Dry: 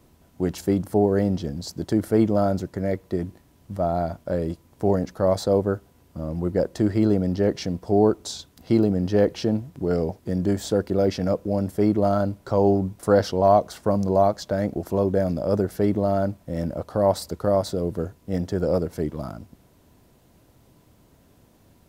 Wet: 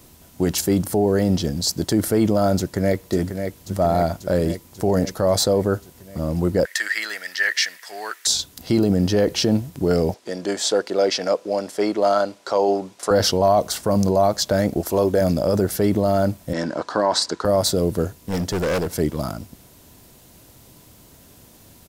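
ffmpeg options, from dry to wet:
-filter_complex "[0:a]asplit=2[a][b];[b]afade=t=in:st=2.58:d=0.01,afade=t=out:st=3.08:d=0.01,aecho=0:1:540|1080|1620|2160|2700|3240|3780|4320|4860|5400|5940:0.421697|0.295188|0.206631|0.144642|0.101249|0.0708745|0.0496122|0.0347285|0.02431|0.017017|0.0119119[c];[a][c]amix=inputs=2:normalize=0,asettb=1/sr,asplit=3[d][e][f];[d]atrim=end=6.654[g];[e]atrim=start=6.65:end=8.27,asetpts=PTS-STARTPTS,afade=t=in:d=0.004:c=qsin,afade=t=out:st=1.616:d=0.004:c=qsin,highpass=f=1.8k:t=q:w=6.5[h];[f]atrim=start=8.266[i];[g][h]acrossfade=d=0.004:c1=hsin:c2=qsin[j];[j][i]acrossfade=d=0.004:c1=qsin:c2=hsin,asettb=1/sr,asplit=3[k][l][m];[k]atrim=end=10.144[n];[l]atrim=start=10.14:end=13.11,asetpts=PTS-STARTPTS,afade=t=in:d=0.004:c=qsin,afade=t=out:st=2.966:d=0.004:c=qsin,highpass=460,lowpass=6.6k[o];[m]atrim=start=13.106[p];[n][o]acrossfade=d=0.004:c1=hsin:c2=qsin[q];[q][p]acrossfade=d=0.004:c1=qsin:c2=hsin,asettb=1/sr,asplit=3[r][s][t];[r]atrim=end=14.814[u];[s]atrim=start=14.81:end=15.21,asetpts=PTS-STARTPTS,afade=t=in:d=0.004:c=qsin,afade=t=out:st=0.396:d=0.004:c=qsin,equalizer=f=140:w=1.1:g=-10[v];[t]atrim=start=15.206[w];[u][v]acrossfade=d=0.004:c1=hsin:c2=qsin[x];[x][w]acrossfade=d=0.004:c1=qsin:c2=hsin,asettb=1/sr,asplit=3[y][z][aa];[y]atrim=end=16.534[ab];[z]atrim=start=16.53:end=17.45,asetpts=PTS-STARTPTS,afade=t=in:d=0.004:c=qsin,afade=t=out:st=0.916:d=0.004:c=qsin,highpass=260,equalizer=f=310:t=q:w=4:g=4,equalizer=f=550:t=q:w=4:g=-4,equalizer=f=1k:t=q:w=4:g=8,equalizer=f=1.6k:t=q:w=4:g=10,equalizer=f=4k:t=q:w=4:g=3,lowpass=f=7.1k:w=0.5412,lowpass=f=7.1k:w=1.3066[ac];[aa]atrim=start=17.446[ad];[ab][ac]acrossfade=d=0.004:c1=hsin:c2=qsin[ae];[ae][ad]acrossfade=d=0.004:c1=qsin:c2=hsin,asettb=1/sr,asplit=3[af][ag][ah];[af]atrim=end=18.214[ai];[ag]atrim=start=18.21:end=18.87,asetpts=PTS-STARTPTS,afade=t=in:d=0.004:c=qsin,afade=t=out:st=0.656:d=0.004:c=qsin,asoftclip=type=hard:threshold=-25dB[aj];[ah]atrim=start=18.866[ak];[ai][aj]acrossfade=d=0.004:c1=hsin:c2=qsin[al];[al][ak]acrossfade=d=0.004:c1=qsin:c2=hsin,highshelf=f=2.8k:g=11.5,alimiter=limit=-14dB:level=0:latency=1:release=16,volume=5.5dB"

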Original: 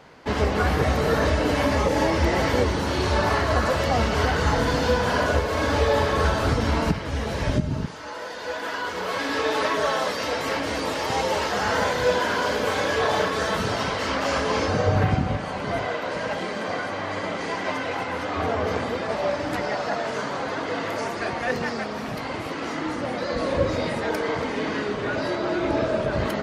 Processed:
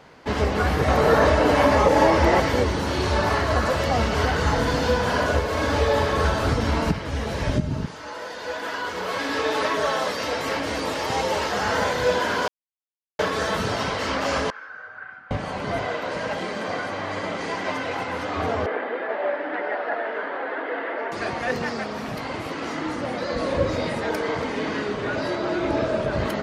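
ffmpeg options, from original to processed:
-filter_complex "[0:a]asettb=1/sr,asplit=3[a][b][c];[a]atrim=end=0.884[d];[b]atrim=start=0.88:end=2.4,asetpts=PTS-STARTPTS,afade=t=in:d=0.004:c=qsin,afade=t=out:st=1.516:d=0.004:c=qsin,equalizer=f=830:t=o:w=2.3:g=7[e];[c]atrim=start=2.396[f];[d][e]acrossfade=d=0.004:c1=hsin:c2=qsin[g];[g][f]acrossfade=d=0.004:c1=qsin:c2=hsin,asettb=1/sr,asplit=3[h][i][j];[h]atrim=end=14.504[k];[i]atrim=start=14.5:end=15.31,asetpts=PTS-STARTPTS,afade=t=in:d=0.004:c=qsin,afade=t=out:st=0.806:d=0.004:c=qsin,bandpass=f=1.5k:t=q:w=11[l];[j]atrim=start=15.306[m];[k][l]acrossfade=d=0.004:c1=hsin:c2=qsin[n];[n][m]acrossfade=d=0.004:c1=qsin:c2=hsin,asettb=1/sr,asplit=3[o][p][q];[o]atrim=end=18.664[r];[p]atrim=start=18.66:end=21.12,asetpts=PTS-STARTPTS,afade=t=in:d=0.004:c=qsin,afade=t=out:st=2.456:d=0.004:c=qsin,highpass=f=310:w=0.5412,highpass=f=310:w=1.3066,equalizer=f=1.1k:t=q:w=4:g=-4,equalizer=f=1.7k:t=q:w=4:g=5,equalizer=f=2.5k:t=q:w=4:g=-4,lowpass=f=2.7k:w=0.5412,lowpass=f=2.7k:w=1.3066[s];[q]atrim=start=21.116[t];[r][s]acrossfade=d=0.004:c1=hsin:c2=qsin[u];[u][t]acrossfade=d=0.004:c1=qsin:c2=hsin,asplit=3[v][w][x];[v]atrim=end=12.48,asetpts=PTS-STARTPTS,afade=t=out:st=12.476:d=0.004:c=hsin[y];[w]atrim=start=12.48:end=13.19,asetpts=PTS-STARTPTS,volume=0[z];[x]atrim=start=13.19,asetpts=PTS-STARTPTS,afade=t=in:d=0.004:c=hsin[aa];[y][z][aa]concat=n=3:v=0:a=1"

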